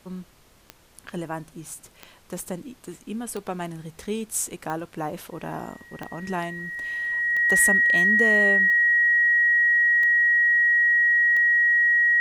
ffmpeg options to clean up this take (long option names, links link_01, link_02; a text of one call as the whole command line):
ffmpeg -i in.wav -af "adeclick=threshold=4,bandreject=frequency=1900:width=30,agate=range=-21dB:threshold=-46dB" out.wav